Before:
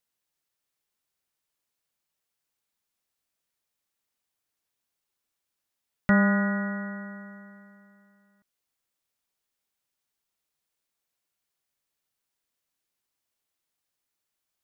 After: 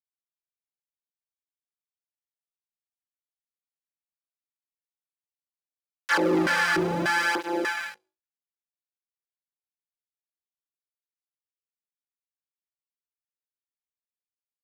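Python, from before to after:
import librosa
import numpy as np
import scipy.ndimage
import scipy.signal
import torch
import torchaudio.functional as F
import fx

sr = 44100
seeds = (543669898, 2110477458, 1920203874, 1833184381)

p1 = np.r_[np.sort(x[:len(x) // 256 * 256].reshape(-1, 256), axis=1).ravel(), x[len(x) // 256 * 256:]]
p2 = fx.fuzz(p1, sr, gain_db=45.0, gate_db=-52.0)
p3 = scipy.signal.sosfilt(scipy.signal.butter(4, 56.0, 'highpass', fs=sr, output='sos'), p2)
p4 = fx.low_shelf(p3, sr, hz=130.0, db=-7.5)
p5 = p4 + 0.6 * np.pad(p4, (int(3.5 * sr / 1000.0), 0))[:len(p4)]
p6 = p5 + fx.room_flutter(p5, sr, wall_m=3.2, rt60_s=0.31, dry=0)
p7 = fx.filter_lfo_bandpass(p6, sr, shape='square', hz=1.7, low_hz=380.0, high_hz=1600.0, q=3.0)
p8 = fx.leveller(p7, sr, passes=2)
p9 = fx.high_shelf(p8, sr, hz=2000.0, db=9.5)
y = fx.flanger_cancel(p9, sr, hz=0.74, depth_ms=4.0)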